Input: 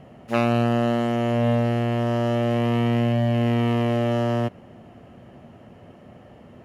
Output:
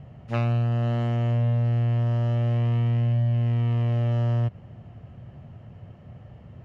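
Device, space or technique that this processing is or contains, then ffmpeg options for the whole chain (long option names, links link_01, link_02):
jukebox: -af "lowpass=6200,lowshelf=frequency=180:width_type=q:width=1.5:gain=11.5,acompressor=threshold=-15dB:ratio=6,volume=-5.5dB"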